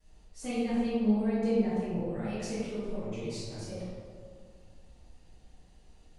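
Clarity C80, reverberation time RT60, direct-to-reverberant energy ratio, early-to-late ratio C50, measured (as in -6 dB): -1.0 dB, 2.1 s, -18.5 dB, -3.5 dB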